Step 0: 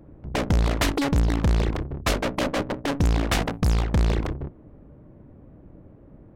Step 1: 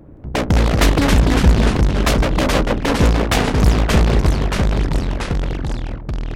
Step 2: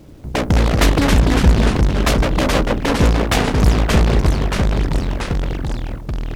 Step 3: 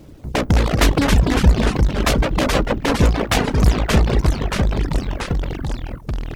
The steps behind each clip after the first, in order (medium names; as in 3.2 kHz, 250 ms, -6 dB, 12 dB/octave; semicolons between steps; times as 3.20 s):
ever faster or slower copies 171 ms, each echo -2 st, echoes 3; trim +6 dB
bit crusher 9-bit
reverb removal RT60 0.72 s